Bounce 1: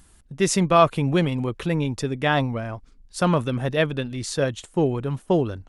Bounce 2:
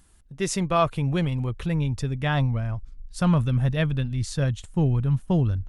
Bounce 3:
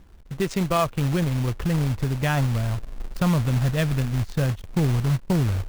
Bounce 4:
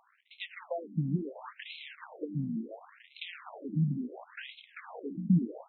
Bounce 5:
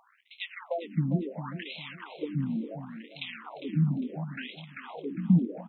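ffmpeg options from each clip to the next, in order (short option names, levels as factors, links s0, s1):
-af "asubboost=boost=9.5:cutoff=130,volume=0.562"
-af "adynamicsmooth=sensitivity=3.5:basefreq=1100,acrusher=bits=3:mode=log:mix=0:aa=0.000001,acompressor=threshold=0.0178:ratio=2,volume=2.82"
-filter_complex "[0:a]asplit=7[s0][s1][s2][s3][s4][s5][s6];[s1]adelay=100,afreqshift=36,volume=0.112[s7];[s2]adelay=200,afreqshift=72,volume=0.0692[s8];[s3]adelay=300,afreqshift=108,volume=0.0432[s9];[s4]adelay=400,afreqshift=144,volume=0.0266[s10];[s5]adelay=500,afreqshift=180,volume=0.0166[s11];[s6]adelay=600,afreqshift=216,volume=0.0102[s12];[s0][s7][s8][s9][s10][s11][s12]amix=inputs=7:normalize=0,acrossover=split=220|3000[s13][s14][s15];[s14]acompressor=threshold=0.0178:ratio=3[s16];[s13][s16][s15]amix=inputs=3:normalize=0,afftfilt=real='re*between(b*sr/1024,210*pow(3000/210,0.5+0.5*sin(2*PI*0.71*pts/sr))/1.41,210*pow(3000/210,0.5+0.5*sin(2*PI*0.71*pts/sr))*1.41)':imag='im*between(b*sr/1024,210*pow(3000/210,0.5+0.5*sin(2*PI*0.71*pts/sr))/1.41,210*pow(3000/210,0.5+0.5*sin(2*PI*0.71*pts/sr))*1.41)':win_size=1024:overlap=0.75,volume=1.19"
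-af "aecho=1:1:403|806|1209:0.266|0.0718|0.0194,volume=1.5"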